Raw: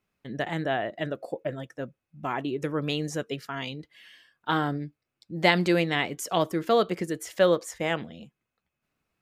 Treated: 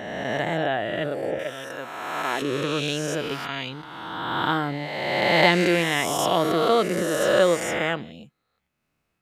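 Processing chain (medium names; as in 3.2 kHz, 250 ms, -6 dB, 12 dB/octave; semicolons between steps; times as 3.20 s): reverse spectral sustain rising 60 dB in 1.99 s; 1.39–2.42 s: tilt EQ +3.5 dB/octave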